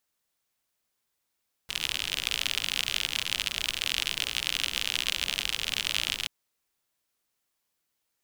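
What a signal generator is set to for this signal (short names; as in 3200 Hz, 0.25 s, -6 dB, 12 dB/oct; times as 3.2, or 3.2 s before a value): rain from filtered ticks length 4.58 s, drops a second 62, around 3000 Hz, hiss -14 dB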